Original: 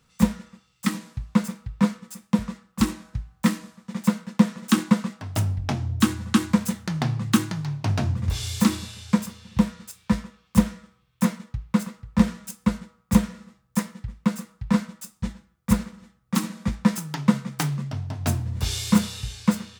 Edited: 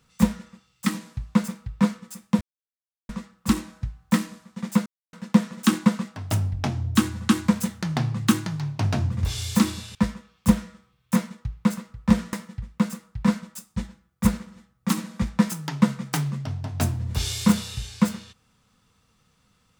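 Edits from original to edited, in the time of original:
2.41 insert silence 0.68 s
4.18 insert silence 0.27 s
9–10.04 cut
12.42–13.79 cut

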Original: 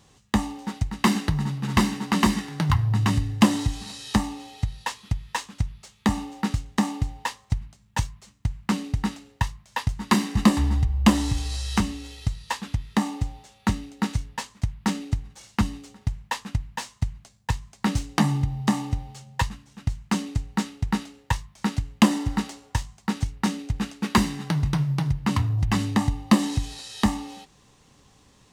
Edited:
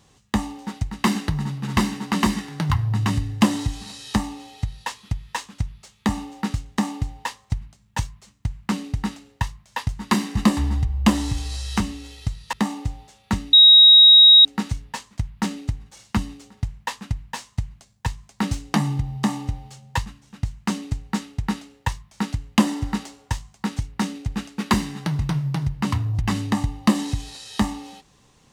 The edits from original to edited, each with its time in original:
12.53–12.89 cut
13.89 add tone 3800 Hz -6.5 dBFS 0.92 s

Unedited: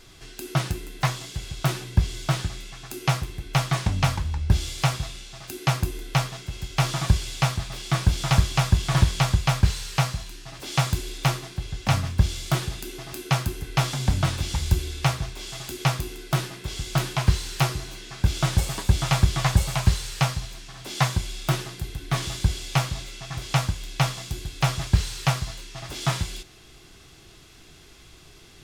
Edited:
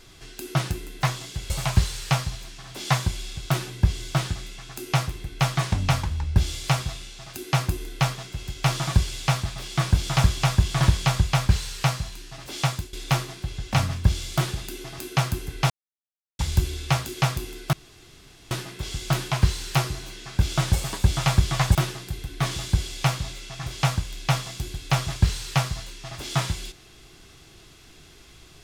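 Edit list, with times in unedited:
10.73–11.07 fade out, to -15.5 dB
13.84–14.53 mute
15.19–15.68 cut
16.36 insert room tone 0.78 s
19.6–21.46 move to 1.5

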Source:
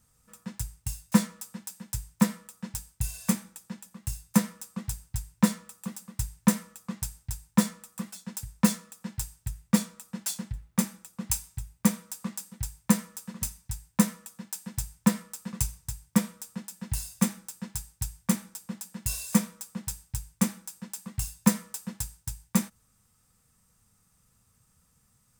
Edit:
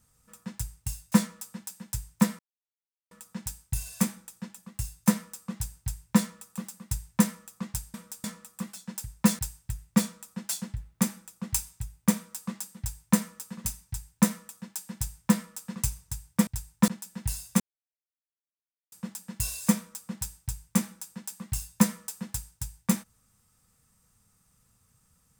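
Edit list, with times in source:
2.39 insert silence 0.72 s
7.22–7.63 swap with 16.24–16.54
8.78–9.16 cut
17.26–18.58 mute

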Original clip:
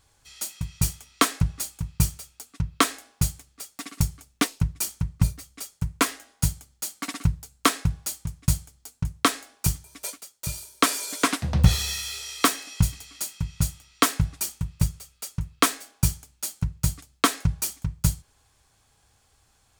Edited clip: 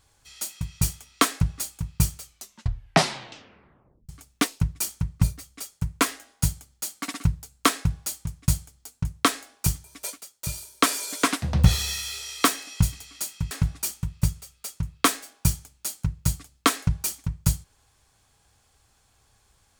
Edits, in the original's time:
2.19 tape stop 1.90 s
13.51–14.09 cut

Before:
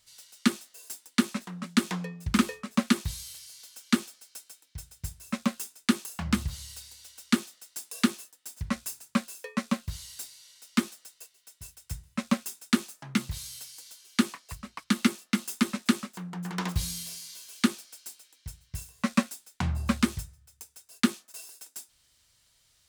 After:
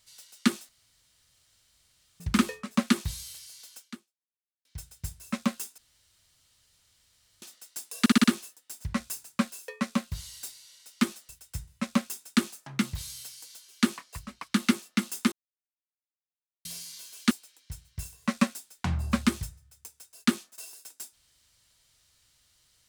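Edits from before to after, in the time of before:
0.69–2.2 room tone
3.77–4.65 fade out exponential
5.78–7.42 room tone
8 stutter 0.06 s, 5 plays
11.05–11.65 cut
15.68–17.01 mute
17.67–18.07 cut

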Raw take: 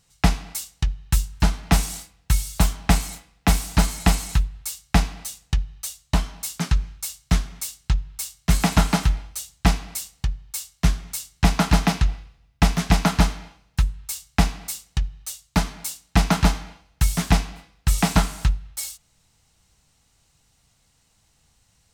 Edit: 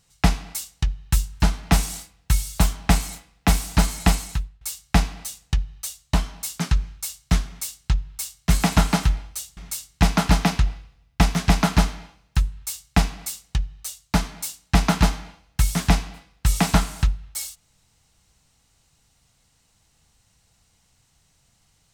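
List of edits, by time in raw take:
4.1–4.61 fade out, to -20 dB
9.57–10.99 cut

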